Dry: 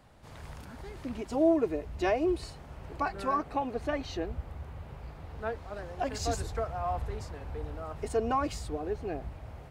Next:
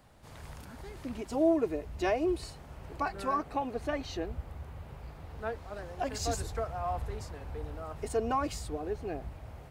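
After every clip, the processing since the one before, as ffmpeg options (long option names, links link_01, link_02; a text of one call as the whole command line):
ffmpeg -i in.wav -af "highshelf=frequency=7600:gain=6.5,volume=-1.5dB" out.wav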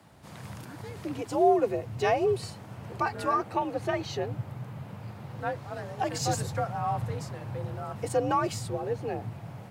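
ffmpeg -i in.wav -af "afreqshift=54,volume=4dB" out.wav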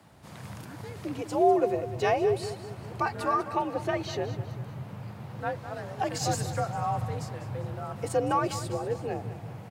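ffmpeg -i in.wav -af "aecho=1:1:198|396|594|792:0.224|0.101|0.0453|0.0204" out.wav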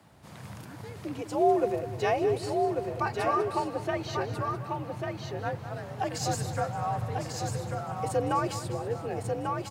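ffmpeg -i in.wav -af "aecho=1:1:1143:0.596,volume=-1.5dB" out.wav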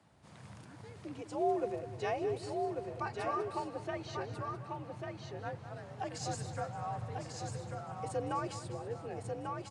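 ffmpeg -i in.wav -af "aresample=22050,aresample=44100,volume=-8.5dB" out.wav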